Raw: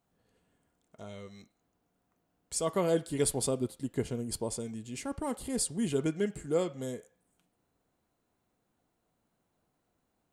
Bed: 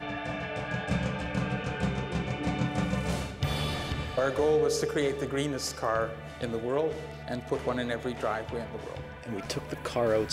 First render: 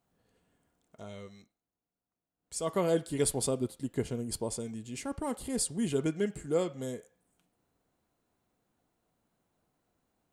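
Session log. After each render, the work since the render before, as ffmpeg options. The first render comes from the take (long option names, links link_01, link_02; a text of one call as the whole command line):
ffmpeg -i in.wav -filter_complex "[0:a]asplit=3[link_01][link_02][link_03];[link_01]atrim=end=1.61,asetpts=PTS-STARTPTS,afade=type=out:start_time=1.23:duration=0.38:silence=0.16788[link_04];[link_02]atrim=start=1.61:end=2.36,asetpts=PTS-STARTPTS,volume=-15.5dB[link_05];[link_03]atrim=start=2.36,asetpts=PTS-STARTPTS,afade=type=in:duration=0.38:silence=0.16788[link_06];[link_04][link_05][link_06]concat=n=3:v=0:a=1" out.wav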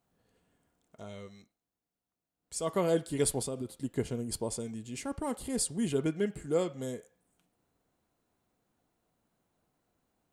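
ffmpeg -i in.wav -filter_complex "[0:a]asettb=1/sr,asplit=3[link_01][link_02][link_03];[link_01]atrim=end=3.414[link_04];[link_02]atrim=start=3.41:end=3.81,asetpts=PTS-STARTPTS,afade=type=in:duration=0.004:curve=qsin,afade=type=out:start_time=0.396:duration=0.004:curve=qsin,acompressor=threshold=-32dB:ratio=6:attack=3.2:release=140:knee=1:detection=peak[link_05];[link_03]atrim=start=3.806[link_06];[link_04][link_05]acrossfade=duration=0.004:curve1=hsin:curve2=qsin[link_07];[link_07][link_06]acrossfade=duration=0.004:curve1=qsin:curve2=hsin,asettb=1/sr,asplit=3[link_08][link_09][link_10];[link_08]atrim=end=5.924[link_11];[link_09]atrim=start=5.92:end=6.42,asetpts=PTS-STARTPTS,afade=type=in:duration=0.004:curve=qsin,afade=type=out:start_time=0.496:duration=0.004:curve=qsin,equalizer=frequency=6800:width=1.5:gain=-5.5[link_12];[link_10]atrim=start=6.416[link_13];[link_11][link_12]acrossfade=duration=0.004:curve1=hsin:curve2=qsin[link_14];[link_14][link_13]acrossfade=duration=0.004:curve1=qsin:curve2=hsin" out.wav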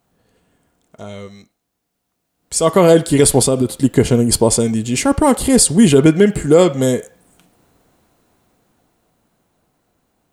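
ffmpeg -i in.wav -af "dynaudnorm=framelen=240:gausssize=21:maxgain=10dB,alimiter=level_in=12.5dB:limit=-1dB:release=50:level=0:latency=1" out.wav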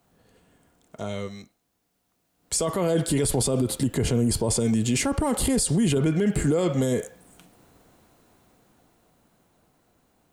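ffmpeg -i in.wav -filter_complex "[0:a]acrossover=split=130[link_01][link_02];[link_02]acompressor=threshold=-17dB:ratio=2[link_03];[link_01][link_03]amix=inputs=2:normalize=0,alimiter=limit=-15dB:level=0:latency=1:release=23" out.wav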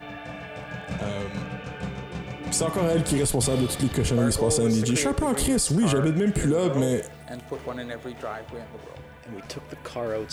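ffmpeg -i in.wav -i bed.wav -filter_complex "[1:a]volume=-3dB[link_01];[0:a][link_01]amix=inputs=2:normalize=0" out.wav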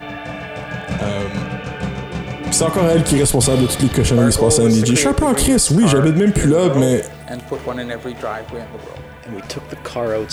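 ffmpeg -i in.wav -af "volume=9dB" out.wav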